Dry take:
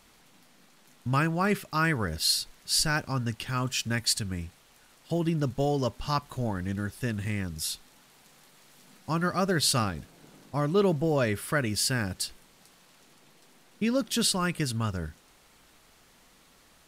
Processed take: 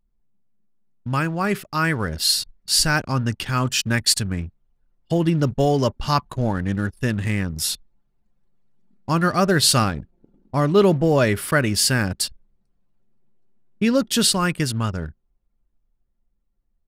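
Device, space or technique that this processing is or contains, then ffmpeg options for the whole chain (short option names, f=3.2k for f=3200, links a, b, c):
voice memo with heavy noise removal: -af "anlmdn=0.1,dynaudnorm=f=260:g=17:m=6dB,volume=2.5dB"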